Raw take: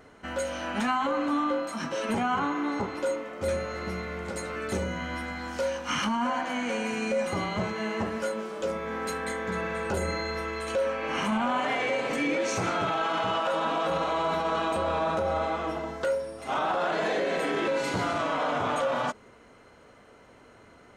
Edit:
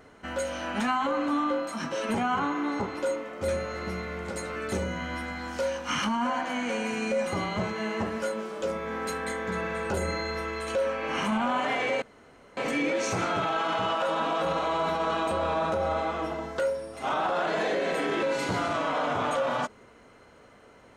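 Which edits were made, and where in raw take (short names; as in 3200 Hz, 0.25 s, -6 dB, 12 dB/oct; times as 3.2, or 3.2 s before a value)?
12.02 insert room tone 0.55 s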